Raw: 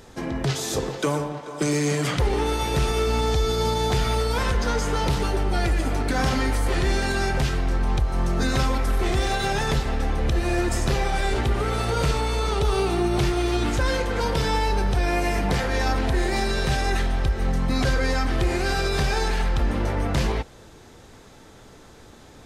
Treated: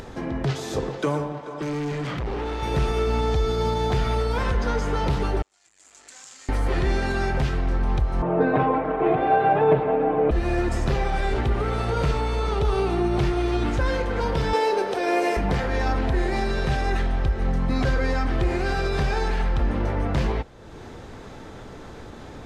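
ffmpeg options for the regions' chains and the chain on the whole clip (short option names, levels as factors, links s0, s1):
-filter_complex "[0:a]asettb=1/sr,asplit=3[s0][s1][s2];[s0]atrim=end=1.544[s3];[s1]atrim=start=1.54:end=2.63,asetpts=PTS-STARTPTS,afade=t=in:d=0.004:c=qsin,afade=t=out:st=1.086:d=0.004:c=qsin,lowpass=5800,volume=18.8,asoftclip=hard,volume=0.0531[s4];[s2]atrim=start=2.626[s5];[s3][s4]acrossfade=d=0.004:c1=hsin:c2=qsin[s6];[s6][s5]acrossfade=d=0.004:c1=qsin:c2=hsin,asettb=1/sr,asplit=3[s7][s8][s9];[s7]atrim=end=5.424[s10];[s8]atrim=start=5.42:end=6.49,asetpts=PTS-STARTPTS,afade=t=in:d=0.004:c=qsin,afade=t=out:st=1.066:d=0.004:c=qsin,volume=18.8,asoftclip=hard,volume=0.0531,bandpass=f=7300:t=q:w=8.3[s11];[s9]atrim=start=6.486[s12];[s10][s11]acrossfade=d=0.004:c1=hsin:c2=qsin[s13];[s13][s12]acrossfade=d=0.004:c1=qsin:c2=hsin,asettb=1/sr,asplit=3[s14][s15][s16];[s14]atrim=end=8.224[s17];[s15]atrim=start=8.22:end=10.31,asetpts=PTS-STARTPTS,afade=t=in:d=0.004:c=qsin,afade=t=out:st=2.086:d=0.004:c=qsin,highpass=160,equalizer=f=290:t=q:w=4:g=5,equalizer=f=450:t=q:w=4:g=9,equalizer=f=660:t=q:w=4:g=10,equalizer=f=950:t=q:w=4:g=5,equalizer=f=1900:t=q:w=4:g=-5,lowpass=f=2400:w=0.5412,lowpass=f=2400:w=1.3066,aecho=1:1:6.5:0.79,atrim=end_sample=92169[s18];[s16]atrim=start=10.306[s19];[s17][s18]acrossfade=d=0.004:c1=hsin:c2=qsin[s20];[s20][s19]acrossfade=d=0.004:c1=qsin:c2=hsin,asettb=1/sr,asplit=3[s21][s22][s23];[s21]atrim=end=14.534[s24];[s22]atrim=start=14.53:end=15.37,asetpts=PTS-STARTPTS,afade=t=in:d=0.004:c=qsin,afade=t=out:st=0.836:d=0.004:c=qsin,highpass=f=420:t=q:w=2.4,highshelf=f=3100:g=7.5[s25];[s23]atrim=start=15.366[s26];[s24][s25]acrossfade=d=0.004:c1=hsin:c2=qsin[s27];[s27][s26]acrossfade=d=0.004:c1=qsin:c2=hsin,lowpass=f=2200:p=1,acompressor=mode=upward:threshold=0.0316:ratio=2.5"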